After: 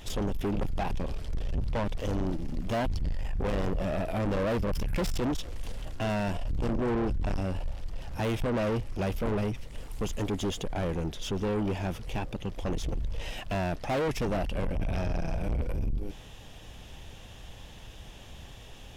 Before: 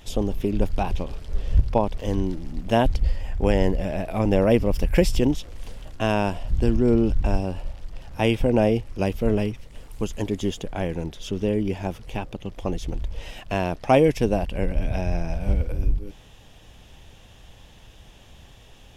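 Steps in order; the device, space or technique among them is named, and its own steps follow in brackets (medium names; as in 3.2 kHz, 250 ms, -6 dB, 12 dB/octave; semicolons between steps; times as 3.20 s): saturation between pre-emphasis and de-emphasis (treble shelf 4.3 kHz +9.5 dB; saturation -28 dBFS, distortion -4 dB; treble shelf 4.3 kHz -9.5 dB); trim +2 dB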